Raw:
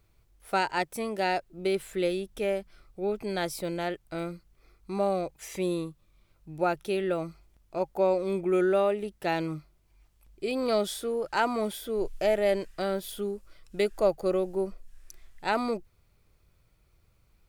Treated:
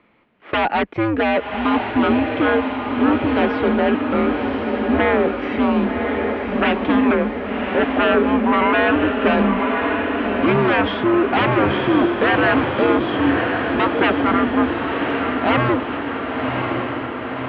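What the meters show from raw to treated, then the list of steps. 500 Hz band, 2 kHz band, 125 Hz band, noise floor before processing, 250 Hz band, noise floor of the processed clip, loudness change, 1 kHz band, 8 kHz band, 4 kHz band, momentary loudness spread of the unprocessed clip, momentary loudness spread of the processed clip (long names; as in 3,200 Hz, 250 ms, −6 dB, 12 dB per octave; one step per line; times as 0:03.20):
+8.5 dB, +16.5 dB, +13.5 dB, −66 dBFS, +16.5 dB, −28 dBFS, +11.0 dB, +13.0 dB, below −20 dB, +11.5 dB, 11 LU, 6 LU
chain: sine wavefolder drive 14 dB, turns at −13 dBFS
single-sideband voice off tune −120 Hz 260–3,000 Hz
feedback delay with all-pass diffusion 1,088 ms, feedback 66%, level −4 dB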